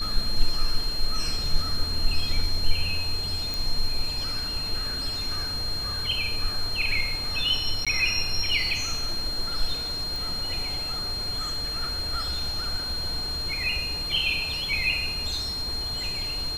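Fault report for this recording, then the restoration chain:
whistle 4,200 Hz −29 dBFS
0:03.54: click
0:07.85–0:07.87: drop-out 16 ms
0:10.16: click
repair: click removal
notch filter 4,200 Hz, Q 30
repair the gap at 0:07.85, 16 ms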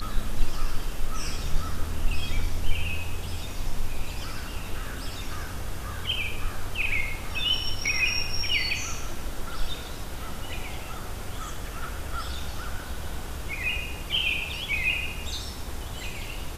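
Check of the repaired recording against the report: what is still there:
none of them is left

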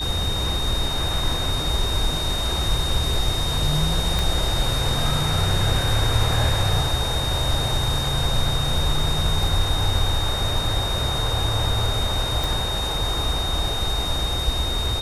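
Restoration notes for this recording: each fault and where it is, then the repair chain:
whistle 3,700 Hz −26 dBFS
0:04.19: click
0:12.44: click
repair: click removal
notch filter 3,700 Hz, Q 30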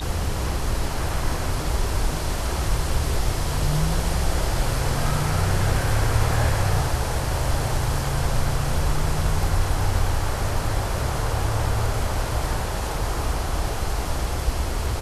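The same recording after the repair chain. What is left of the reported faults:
none of them is left

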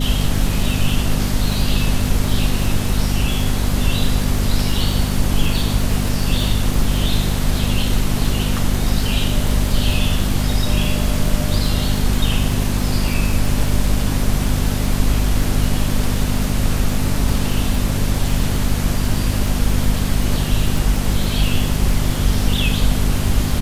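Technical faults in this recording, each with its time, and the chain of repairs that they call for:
surface crackle 49 per second −21 dBFS
mains hum 50 Hz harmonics 5 −21 dBFS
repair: click removal
hum removal 50 Hz, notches 5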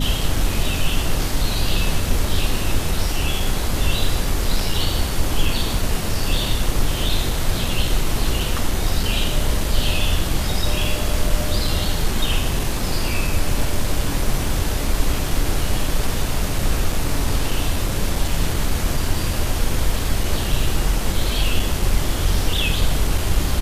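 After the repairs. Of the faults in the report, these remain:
none of them is left

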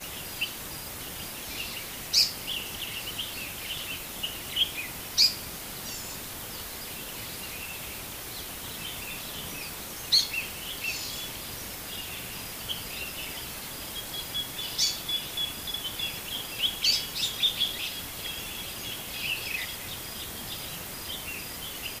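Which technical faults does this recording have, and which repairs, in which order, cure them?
0:06.94: click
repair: click removal

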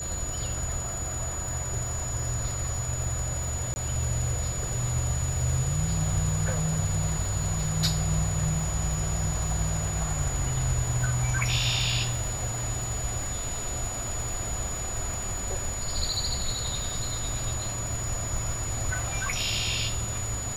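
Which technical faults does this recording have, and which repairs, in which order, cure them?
surface crackle 56 per second −34 dBFS
whistle 6,900 Hz −33 dBFS
0:03.74–0:03.76: drop-out 20 ms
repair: click removal
notch filter 6,900 Hz, Q 30
repair the gap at 0:03.74, 20 ms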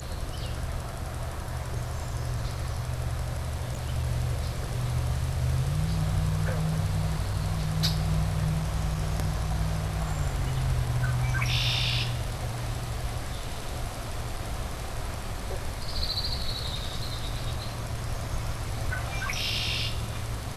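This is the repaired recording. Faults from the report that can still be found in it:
none of them is left

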